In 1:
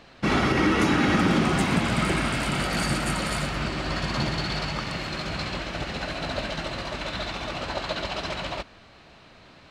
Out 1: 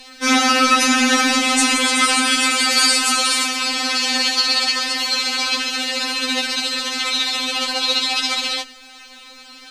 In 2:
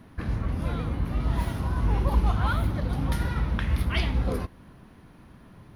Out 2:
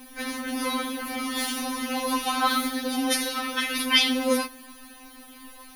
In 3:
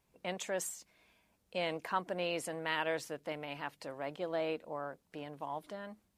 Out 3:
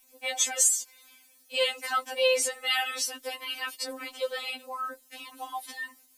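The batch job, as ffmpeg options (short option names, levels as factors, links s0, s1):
-filter_complex "[0:a]crystalizer=i=7.5:c=0,acrossover=split=9100[s0][s1];[s1]acompressor=threshold=0.00794:ratio=4:attack=1:release=60[s2];[s0][s2]amix=inputs=2:normalize=0,afftfilt=real='re*3.46*eq(mod(b,12),0)':imag='im*3.46*eq(mod(b,12),0)':win_size=2048:overlap=0.75,volume=1.78"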